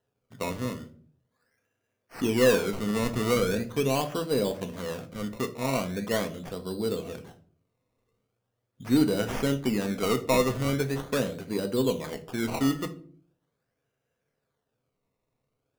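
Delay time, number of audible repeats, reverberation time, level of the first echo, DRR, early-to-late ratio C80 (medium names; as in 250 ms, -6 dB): no echo, no echo, 0.50 s, no echo, 6.5 dB, 20.0 dB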